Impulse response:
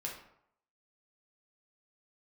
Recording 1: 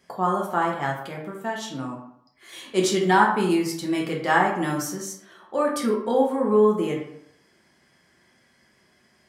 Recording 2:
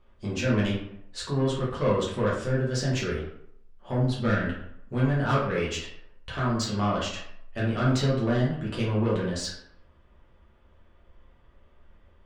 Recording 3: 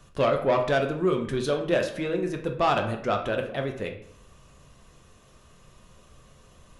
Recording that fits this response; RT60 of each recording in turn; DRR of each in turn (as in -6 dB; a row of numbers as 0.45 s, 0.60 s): 1; 0.70 s, 0.70 s, 0.70 s; -2.0 dB, -7.0 dB, 3.0 dB